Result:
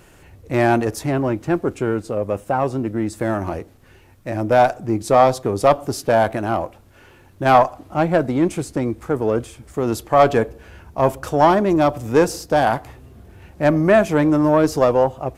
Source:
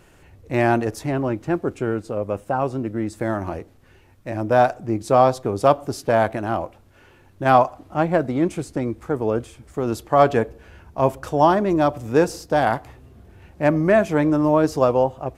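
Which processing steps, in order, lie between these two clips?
one diode to ground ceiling -6.5 dBFS; high shelf 7700 Hz +4.5 dB; gain +3.5 dB

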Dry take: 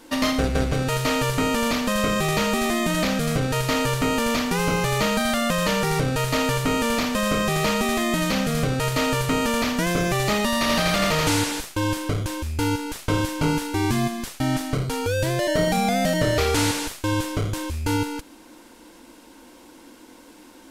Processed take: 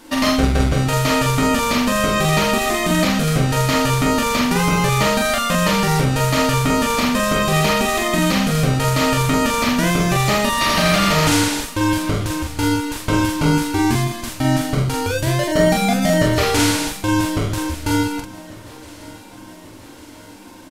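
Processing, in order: notch 480 Hz, Q 12; doubler 45 ms -3 dB; feedback echo 1.143 s, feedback 57%, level -21 dB; gain +3.5 dB

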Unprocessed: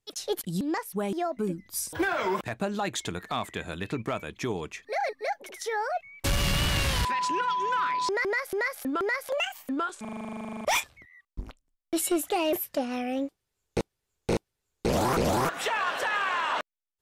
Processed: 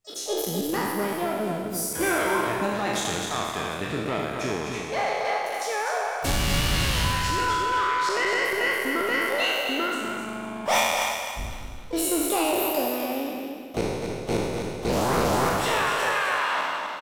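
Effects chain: spectral trails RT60 1.61 s; feedback echo 0.254 s, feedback 29%, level -6 dB; harmoniser +5 st -16 dB, +7 st -12 dB; gain -2 dB

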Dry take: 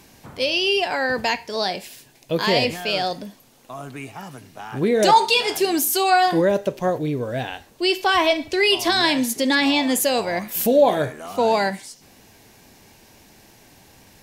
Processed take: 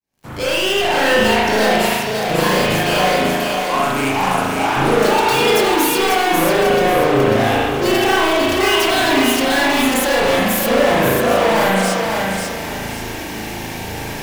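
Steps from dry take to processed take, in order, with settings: opening faded in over 1.10 s; 3–4.77 graphic EQ 125/1000/8000 Hz -11/+8/+5 dB; soft clip -20 dBFS, distortion -9 dB; sample leveller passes 5; thinning echo 0.543 s, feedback 35%, high-pass 160 Hz, level -4 dB; spring tank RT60 1.1 s, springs 37 ms, chirp 80 ms, DRR -6 dB; gain -1 dB

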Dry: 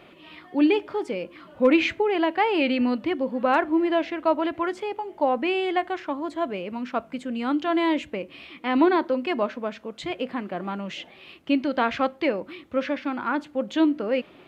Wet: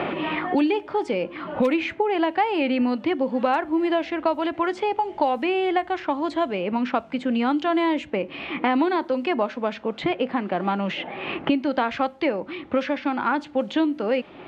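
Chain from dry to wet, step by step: bell 830 Hz +6 dB 0.25 oct; low-pass opened by the level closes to 2400 Hz, open at -17 dBFS; three-band squash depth 100%

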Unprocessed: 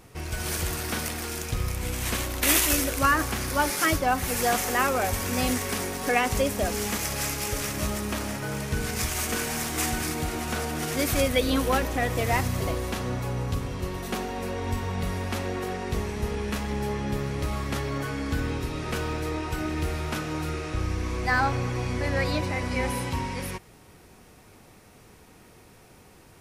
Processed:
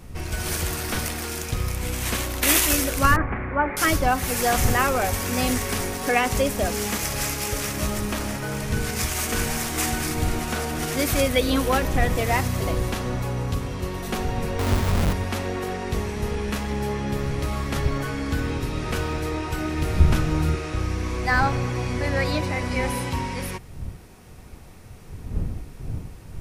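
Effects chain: 14.59–15.13 half-waves squared off; wind noise 96 Hz -35 dBFS; 3.16–3.77 elliptic low-pass 2200 Hz, stop band 60 dB; 20–20.55 low shelf 200 Hz +10.5 dB; gain +2.5 dB

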